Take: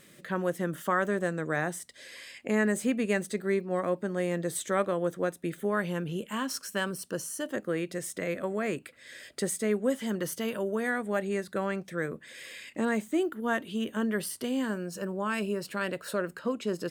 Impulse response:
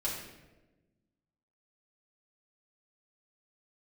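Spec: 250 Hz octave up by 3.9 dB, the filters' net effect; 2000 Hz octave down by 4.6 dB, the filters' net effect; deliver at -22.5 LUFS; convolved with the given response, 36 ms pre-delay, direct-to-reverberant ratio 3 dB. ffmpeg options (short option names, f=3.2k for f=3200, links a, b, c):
-filter_complex "[0:a]equalizer=f=250:t=o:g=5,equalizer=f=2k:t=o:g=-6,asplit=2[a][b];[1:a]atrim=start_sample=2205,adelay=36[c];[b][c]afir=irnorm=-1:irlink=0,volume=-7.5dB[d];[a][d]amix=inputs=2:normalize=0,volume=5dB"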